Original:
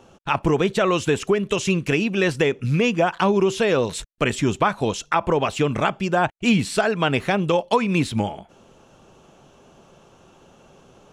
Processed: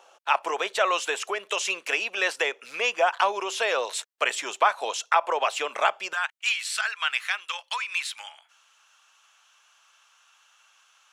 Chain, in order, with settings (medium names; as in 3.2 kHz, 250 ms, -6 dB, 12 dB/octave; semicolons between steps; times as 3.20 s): high-pass 600 Hz 24 dB/octave, from 6.13 s 1.3 kHz